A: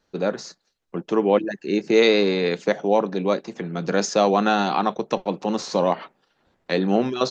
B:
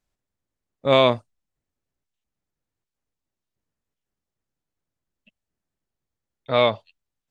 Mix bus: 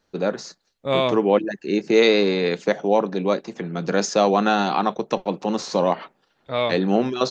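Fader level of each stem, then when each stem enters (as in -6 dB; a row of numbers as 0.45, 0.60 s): +0.5, -4.5 dB; 0.00, 0.00 s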